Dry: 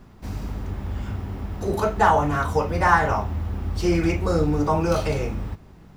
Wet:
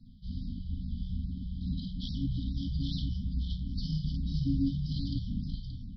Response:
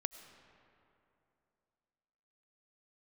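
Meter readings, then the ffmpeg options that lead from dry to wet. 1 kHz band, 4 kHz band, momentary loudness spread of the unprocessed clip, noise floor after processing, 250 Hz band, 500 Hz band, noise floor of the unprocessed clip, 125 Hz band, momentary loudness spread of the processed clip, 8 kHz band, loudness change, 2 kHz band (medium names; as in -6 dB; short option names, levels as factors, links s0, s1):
under -40 dB, -4.0 dB, 14 LU, -42 dBFS, -8.0 dB, under -40 dB, -47 dBFS, -7.0 dB, 8 LU, under -20 dB, -12.0 dB, under -40 dB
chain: -af "afreqshift=-17,aresample=11025,asoftclip=type=hard:threshold=0.168,aresample=44100,afftfilt=real='re*(1-between(b*sr/4096,280,3000))':imag='im*(1-between(b*sr/4096,280,3000))':win_size=4096:overlap=0.75,aecho=1:1:51|55|575:0.501|0.422|0.422,afftfilt=real='re*(1-between(b*sr/1024,250*pow(2700/250,0.5+0.5*sin(2*PI*2.4*pts/sr))/1.41,250*pow(2700/250,0.5+0.5*sin(2*PI*2.4*pts/sr))*1.41))':imag='im*(1-between(b*sr/1024,250*pow(2700/250,0.5+0.5*sin(2*PI*2.4*pts/sr))/1.41,250*pow(2700/250,0.5+0.5*sin(2*PI*2.4*pts/sr))*1.41))':win_size=1024:overlap=0.75,volume=0.501"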